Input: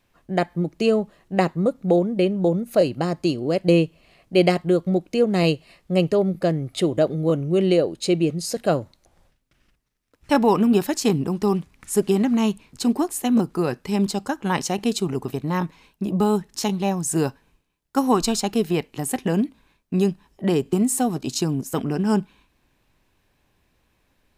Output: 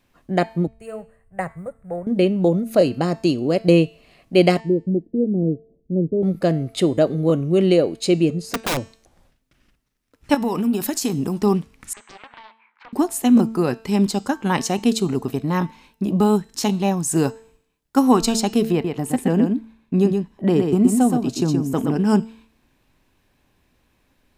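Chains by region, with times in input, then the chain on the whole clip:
0:00.67–0:02.07: mu-law and A-law mismatch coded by mu + drawn EQ curve 110 Hz 0 dB, 270 Hz −26 dB, 610 Hz −9 dB, 1,100 Hz −11 dB, 1,900 Hz −6 dB, 3,000 Hz −25 dB, 5,900 Hz −28 dB, 8,700 Hz −3 dB, 13,000 Hz −16 dB + multiband upward and downward expander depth 70%
0:04.60–0:06.23: inverse Chebyshev low-pass filter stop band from 1,400 Hz, stop band 60 dB + low-shelf EQ 170 Hz −5 dB
0:08.30–0:08.77: high-shelf EQ 2,400 Hz −11.5 dB + wrap-around overflow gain 18.5 dB
0:10.34–0:11.40: high-shelf EQ 6,400 Hz +10 dB + downward compressor 12 to 1, threshold −21 dBFS
0:11.93–0:12.93: Chebyshev band-pass filter 880–2,300 Hz, order 3 + downward compressor 10 to 1, threshold −39 dBFS + highs frequency-modulated by the lows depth 0.61 ms
0:18.72–0:21.96: high-shelf EQ 2,100 Hz −8 dB + single-tap delay 122 ms −5 dB
whole clip: parametric band 250 Hz +4.5 dB 0.44 octaves; hum removal 223.9 Hz, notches 39; level +2 dB

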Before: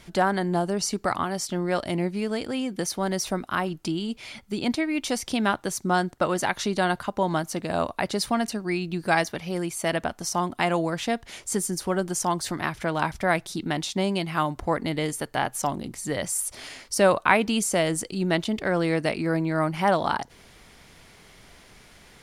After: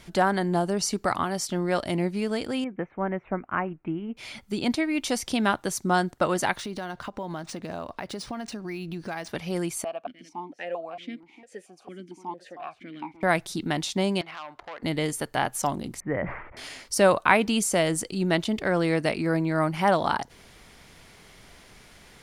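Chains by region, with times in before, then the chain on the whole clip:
0:02.64–0:04.17: elliptic low-pass filter 2,400 Hz, stop band 50 dB + expander for the loud parts, over −37 dBFS
0:06.56–0:09.29: downward compressor 4 to 1, threshold −31 dBFS + linearly interpolated sample-rate reduction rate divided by 3×
0:09.84–0:13.23: single-tap delay 301 ms −13 dB + formant filter that steps through the vowels 4.4 Hz
0:14.21–0:14.83: three-way crossover with the lows and the highs turned down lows −22 dB, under 450 Hz, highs −19 dB, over 3,700 Hz + downward compressor 3 to 1, threshold −34 dBFS + saturating transformer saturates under 2,100 Hz
0:16.00–0:16.57: Butterworth low-pass 2,200 Hz 48 dB per octave + level that may fall only so fast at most 65 dB per second
whole clip: no processing

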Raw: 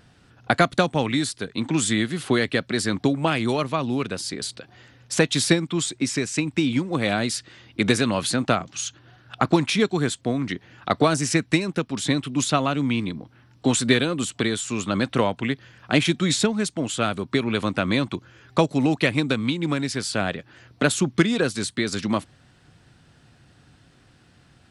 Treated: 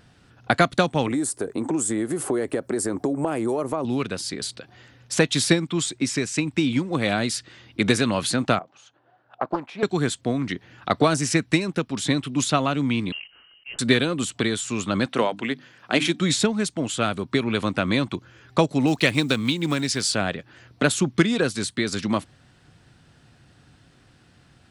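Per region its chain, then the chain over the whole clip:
0:01.07–0:03.85: drawn EQ curve 190 Hz 0 dB, 360 Hz +12 dB, 840 Hz +8 dB, 3,800 Hz −12 dB, 8,300 Hz +10 dB + downward compressor 4 to 1, threshold −22 dBFS
0:08.59–0:09.83: resonant band-pass 690 Hz, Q 1.9 + highs frequency-modulated by the lows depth 0.3 ms
0:13.12–0:13.79: volume swells 469 ms + floating-point word with a short mantissa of 2 bits + voice inversion scrambler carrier 3,000 Hz
0:15.06–0:16.20: high-pass filter 210 Hz + mains-hum notches 50/100/150/200/250/300 Hz
0:18.87–0:20.15: one scale factor per block 7 bits + parametric band 6,200 Hz +6.5 dB 2 octaves
whole clip: no processing

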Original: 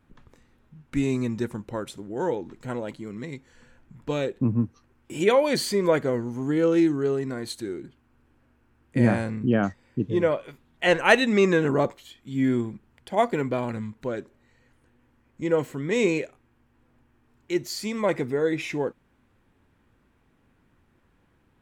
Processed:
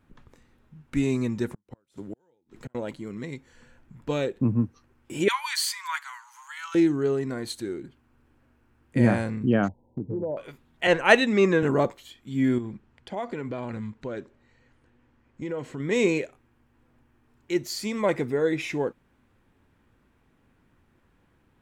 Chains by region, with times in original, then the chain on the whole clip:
0:01.48–0:02.75: gate with flip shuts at −26 dBFS, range −41 dB + multiband upward and downward compressor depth 40%
0:05.28–0:06.75: Butterworth high-pass 910 Hz 72 dB per octave + high-shelf EQ 4,800 Hz +4.5 dB
0:09.68–0:10.37: linear-phase brick-wall low-pass 1,000 Hz + downward compressor, threshold −26 dBFS
0:10.87–0:11.63: high-shelf EQ 10,000 Hz −6.5 dB + multiband upward and downward expander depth 40%
0:12.58–0:15.80: low-pass filter 6,700 Hz + downward compressor 4 to 1, threshold −29 dBFS
whole clip: no processing

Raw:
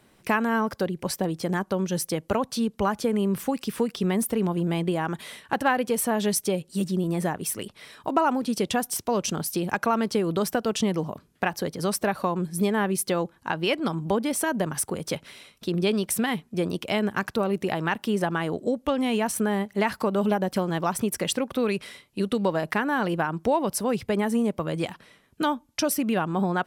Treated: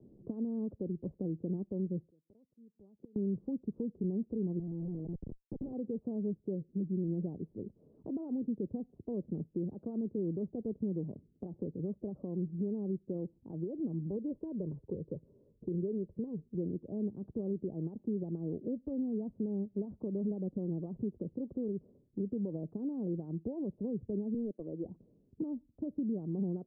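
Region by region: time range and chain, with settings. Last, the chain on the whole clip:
0:02.04–0:03.16: low-shelf EQ 97 Hz −8 dB + gate with flip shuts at −23 dBFS, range −34 dB
0:04.59–0:05.73: low-shelf EQ 410 Hz +4.5 dB + downward compressor 8 to 1, threshold −26 dBFS + comparator with hysteresis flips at −31 dBFS
0:14.16–0:16.55: parametric band 730 Hz −6.5 dB 0.27 octaves + comb filter 2 ms, depth 39%
0:24.34–0:24.85: mu-law and A-law mismatch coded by A + high-pass filter 280 Hz + hard clipping −22 dBFS
whole clip: brickwall limiter −19 dBFS; inverse Chebyshev low-pass filter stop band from 1,900 Hz, stop band 70 dB; multiband upward and downward compressor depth 40%; level −6.5 dB

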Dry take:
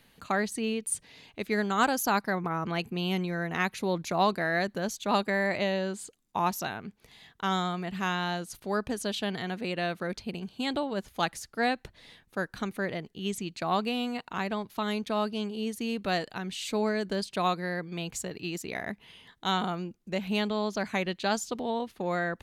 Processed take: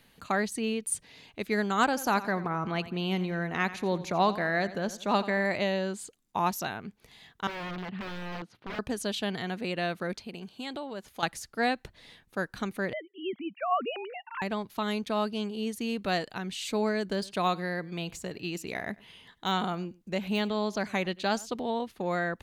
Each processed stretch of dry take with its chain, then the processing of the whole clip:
0:01.84–0:05.45: high-shelf EQ 6,900 Hz −9 dB + repeating echo 87 ms, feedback 41%, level −15 dB
0:07.47–0:08.79: high-pass filter 140 Hz + wrap-around overflow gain 29 dB + high-frequency loss of the air 330 metres
0:10.16–0:11.23: low-shelf EQ 140 Hz −11 dB + downward compressor 2 to 1, threshold −37 dBFS
0:12.93–0:14.42: three sine waves on the formant tracks + low-pass filter 2,600 Hz + low-shelf EQ 300 Hz −7.5 dB
0:17.06–0:21.50: de-essing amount 80% + single-tap delay 99 ms −23 dB
whole clip: no processing

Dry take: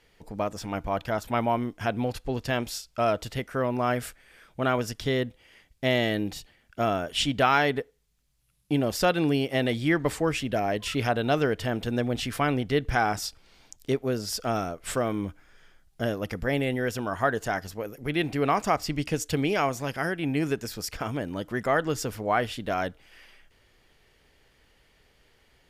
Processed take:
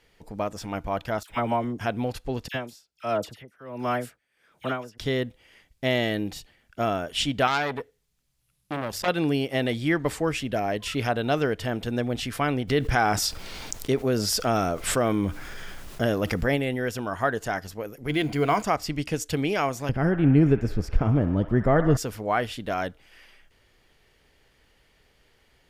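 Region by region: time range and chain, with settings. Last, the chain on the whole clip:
0:01.23–0:01.79: all-pass dispersion lows, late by 67 ms, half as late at 1,100 Hz + linearly interpolated sample-rate reduction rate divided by 2×
0:02.48–0:04.98: high-pass filter 100 Hz + all-pass dispersion lows, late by 61 ms, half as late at 1,900 Hz + tremolo with a sine in dB 1.4 Hz, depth 19 dB
0:07.47–0:09.08: mains-hum notches 50/100 Hz + saturating transformer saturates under 2,500 Hz
0:12.67–0:16.55: background noise pink −67 dBFS + envelope flattener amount 50%
0:18.09–0:18.63: mu-law and A-law mismatch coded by mu + EQ curve with evenly spaced ripples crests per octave 1.8, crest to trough 8 dB
0:19.89–0:21.97: spectral tilt −4.5 dB per octave + delay with a band-pass on its return 63 ms, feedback 76%, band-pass 1,400 Hz, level −10 dB
whole clip: no processing

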